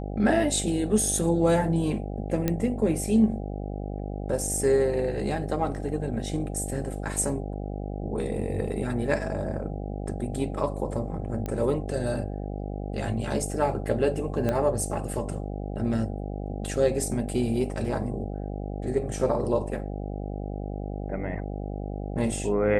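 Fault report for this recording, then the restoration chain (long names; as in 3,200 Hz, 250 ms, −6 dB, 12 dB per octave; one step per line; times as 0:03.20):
mains buzz 50 Hz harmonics 16 −33 dBFS
0:02.48: click −11 dBFS
0:11.46: click −19 dBFS
0:14.49: click −14 dBFS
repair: click removal
hum removal 50 Hz, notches 16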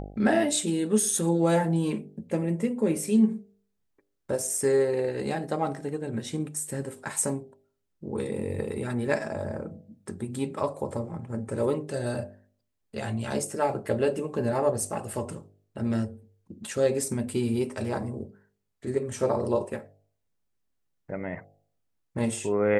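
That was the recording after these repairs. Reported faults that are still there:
0:14.49: click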